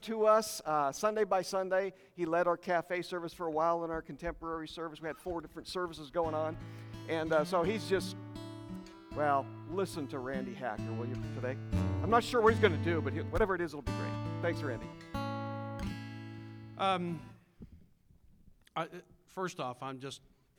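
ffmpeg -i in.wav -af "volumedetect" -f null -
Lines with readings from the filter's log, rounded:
mean_volume: -34.8 dB
max_volume: -12.3 dB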